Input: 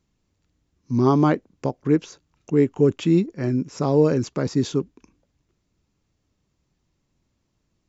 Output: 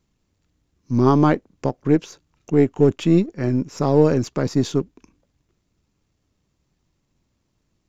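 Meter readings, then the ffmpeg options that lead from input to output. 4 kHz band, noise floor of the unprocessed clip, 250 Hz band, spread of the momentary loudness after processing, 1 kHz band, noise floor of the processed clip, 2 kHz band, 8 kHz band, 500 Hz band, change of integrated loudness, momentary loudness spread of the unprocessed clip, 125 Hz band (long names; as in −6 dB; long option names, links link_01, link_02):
+1.5 dB, −73 dBFS, +2.0 dB, 9 LU, +3.0 dB, −72 dBFS, +2.5 dB, can't be measured, +2.0 dB, +2.0 dB, 9 LU, +2.5 dB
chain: -af "aeval=exprs='if(lt(val(0),0),0.708*val(0),val(0))':channel_layout=same,volume=3dB"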